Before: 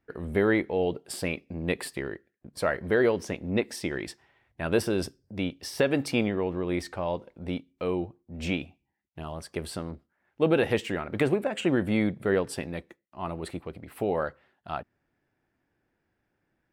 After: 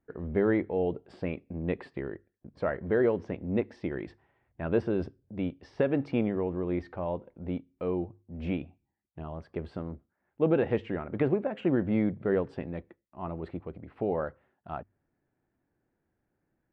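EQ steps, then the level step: tape spacing loss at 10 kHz 45 dB; notches 50/100 Hz; 0.0 dB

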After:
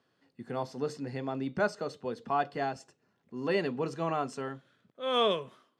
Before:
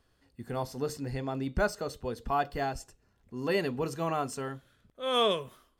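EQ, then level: HPF 140 Hz 24 dB/oct; air absorption 86 m; 0.0 dB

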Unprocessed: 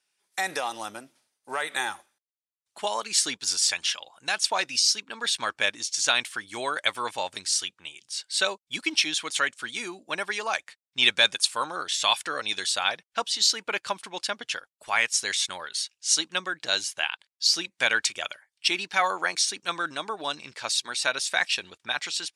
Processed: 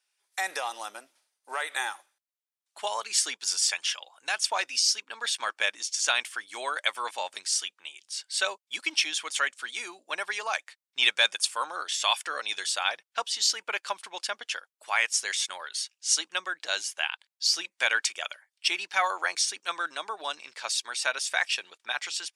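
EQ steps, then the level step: HPF 540 Hz 12 dB/oct; dynamic EQ 4000 Hz, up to -7 dB, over -45 dBFS, Q 7.6; -1.5 dB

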